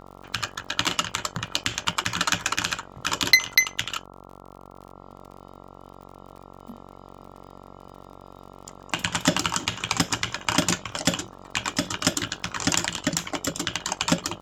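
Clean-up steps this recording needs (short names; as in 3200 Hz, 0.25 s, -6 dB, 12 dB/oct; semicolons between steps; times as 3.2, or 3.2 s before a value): de-click; de-hum 46.6 Hz, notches 29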